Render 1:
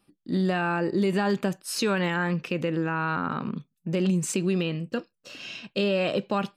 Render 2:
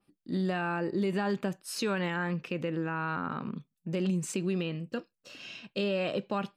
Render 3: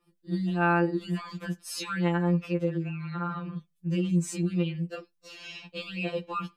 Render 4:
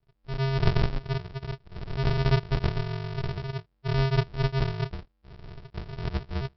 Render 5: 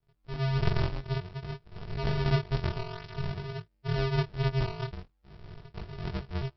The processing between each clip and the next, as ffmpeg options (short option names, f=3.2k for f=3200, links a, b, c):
-af "adynamicequalizer=threshold=0.00501:dfrequency=3900:dqfactor=0.7:tfrequency=3900:tqfactor=0.7:attack=5:release=100:ratio=0.375:range=2:mode=cutabove:tftype=highshelf,volume=-5.5dB"
-filter_complex "[0:a]asplit=2[a][b];[b]acompressor=threshold=-37dB:ratio=6,volume=-3dB[c];[a][c]amix=inputs=2:normalize=0,afftfilt=real='re*2.83*eq(mod(b,8),0)':imag='im*2.83*eq(mod(b,8),0)':win_size=2048:overlap=0.75"
-af "afreqshift=-49,aresample=11025,acrusher=samples=41:mix=1:aa=0.000001,aresample=44100,volume=2dB"
-af "flanger=delay=19:depth=3.9:speed=0.53"